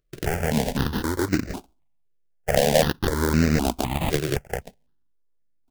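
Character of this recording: aliases and images of a low sample rate 1200 Hz, jitter 20%; notches that jump at a steady rate 3.9 Hz 230–3300 Hz

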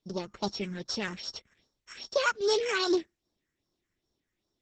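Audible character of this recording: a buzz of ramps at a fixed pitch in blocks of 8 samples; phasing stages 4, 2.5 Hz, lowest notch 700–2300 Hz; Opus

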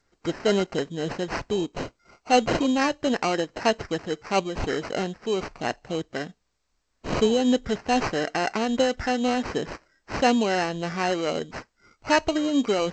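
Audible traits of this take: tremolo triangle 3.9 Hz, depth 30%; aliases and images of a low sample rate 3500 Hz, jitter 0%; G.722

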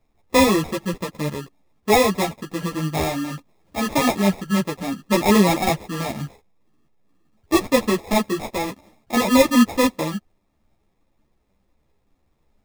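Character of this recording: aliases and images of a low sample rate 1500 Hz, jitter 0%; a shimmering, thickened sound

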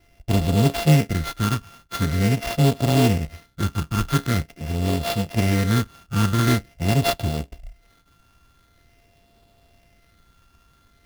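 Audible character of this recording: a buzz of ramps at a fixed pitch in blocks of 64 samples; phasing stages 8, 0.45 Hz, lowest notch 620–1700 Hz; aliases and images of a low sample rate 7900 Hz, jitter 20%

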